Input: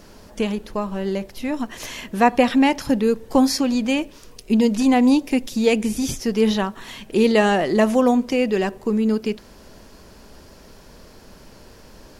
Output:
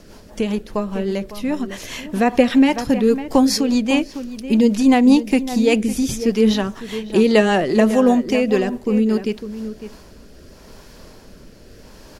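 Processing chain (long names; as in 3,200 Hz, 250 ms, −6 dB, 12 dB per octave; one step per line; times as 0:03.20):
slap from a distant wall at 95 metres, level −12 dB
rotating-speaker cabinet horn 5 Hz, later 0.8 Hz, at 0:09.27
level +4 dB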